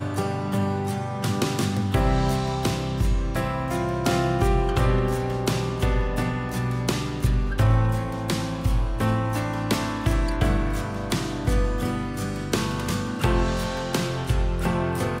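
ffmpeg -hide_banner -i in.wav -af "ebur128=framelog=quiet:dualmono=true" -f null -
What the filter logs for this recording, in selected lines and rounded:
Integrated loudness:
  I:         -22.0 LUFS
  Threshold: -32.0 LUFS
Loudness range:
  LRA:         1.7 LU
  Threshold: -41.9 LUFS
  LRA low:   -22.9 LUFS
  LRA high:  -21.1 LUFS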